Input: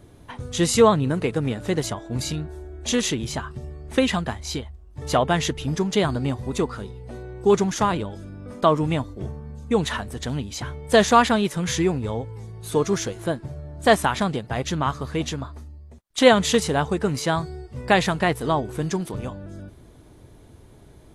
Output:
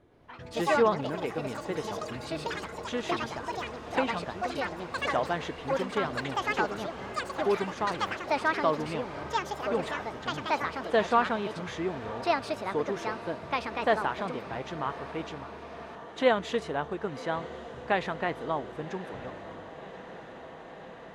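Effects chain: tone controls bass -9 dB, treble -14 dB; on a send: echo that smears into a reverb 1106 ms, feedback 78%, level -15 dB; on the sum: ever faster or slower copies 114 ms, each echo +5 st, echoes 3; treble shelf 11 kHz -12 dB; trim -8 dB

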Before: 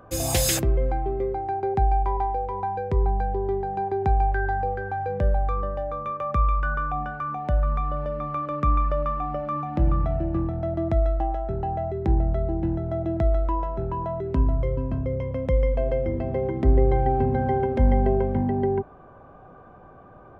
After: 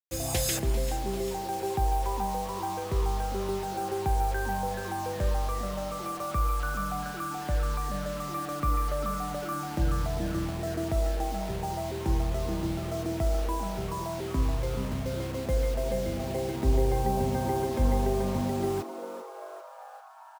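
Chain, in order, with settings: bit crusher 6-bit; on a send: frequency-shifting echo 394 ms, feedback 64%, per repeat +140 Hz, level -13 dB; on the sum: trim -6 dB

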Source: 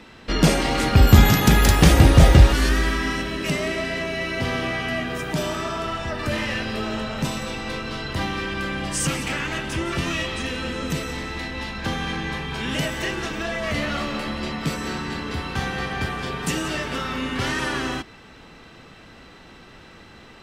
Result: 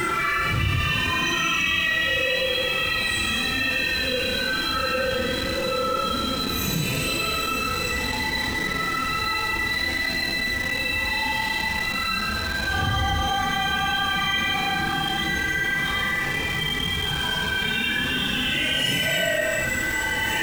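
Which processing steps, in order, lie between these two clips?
spectral noise reduction 13 dB; Paulstretch 6.5×, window 0.05 s, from 9.89 s; in parallel at -9.5 dB: word length cut 6-bit, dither none; on the sum: level flattener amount 70%

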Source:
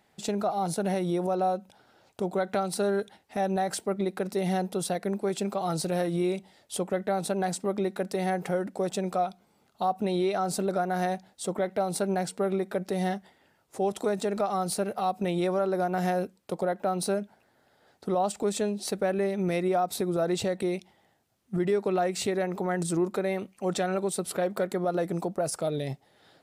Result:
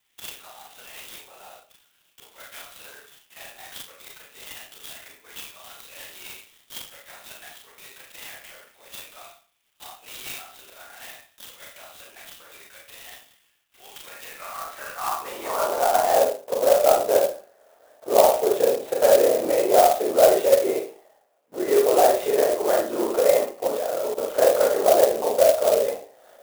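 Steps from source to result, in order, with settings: high-pass 210 Hz; bass shelf 490 Hz +8 dB; LPC vocoder at 8 kHz whisper; Schroeder reverb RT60 0.42 s, combs from 27 ms, DRR -1.5 dB; high-pass sweep 3.1 kHz -> 560 Hz, 13.91–16.36 s; 23.67–24.24 s: level held to a coarse grid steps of 13 dB; sampling jitter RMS 0.055 ms

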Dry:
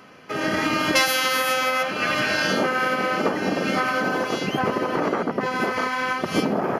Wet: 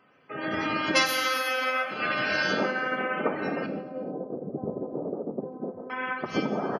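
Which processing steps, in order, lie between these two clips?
hum notches 60/120/180/240/300 Hz; spectral gate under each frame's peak -20 dB strong; 3.66–5.90 s: inverse Chebyshev low-pass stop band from 2.8 kHz, stop band 70 dB; flange 0.3 Hz, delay 6.1 ms, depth 9.2 ms, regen +90%; speakerphone echo 140 ms, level -23 dB; gated-style reverb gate 470 ms falling, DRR 7 dB; upward expansion 1.5:1, over -43 dBFS; trim +1.5 dB

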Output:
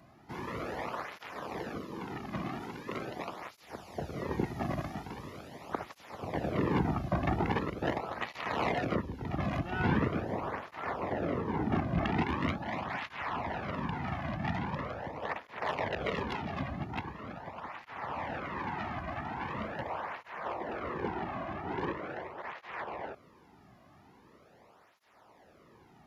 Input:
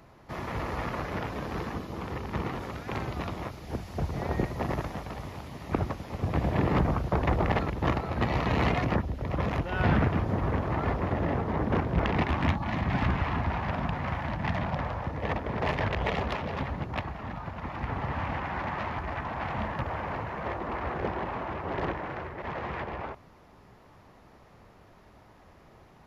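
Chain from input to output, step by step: 1.85–3.41 s: peaking EQ 78 Hz -12 dB 0.7 oct; cancelling through-zero flanger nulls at 0.42 Hz, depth 2.3 ms; trim -1 dB

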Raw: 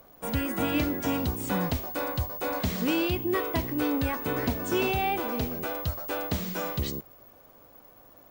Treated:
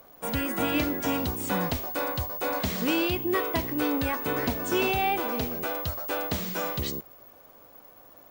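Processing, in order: bass shelf 260 Hz -6 dB; trim +2.5 dB

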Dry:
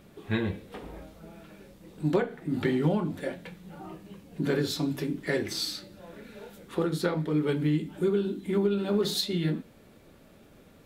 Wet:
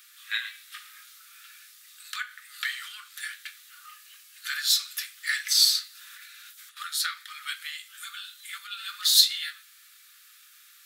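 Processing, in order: rippled Chebyshev high-pass 1.2 kHz, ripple 3 dB; tilt EQ +4 dB/octave; 5.95–6.77 s: compressor with a negative ratio -53 dBFS, ratio -1; trim +4 dB

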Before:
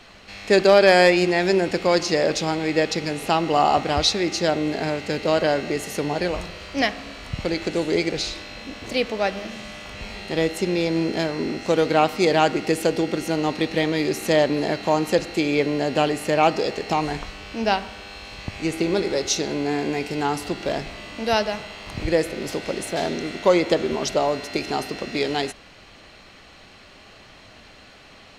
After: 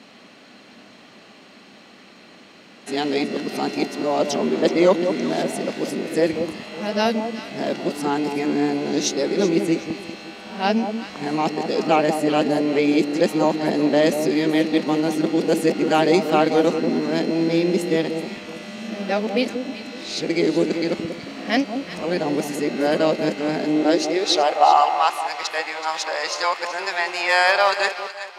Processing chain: reverse the whole clip; high-pass sweep 220 Hz -> 1 kHz, 23.63–24.86 s; echo whose repeats swap between lows and highs 188 ms, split 990 Hz, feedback 53%, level -7 dB; trim -1 dB

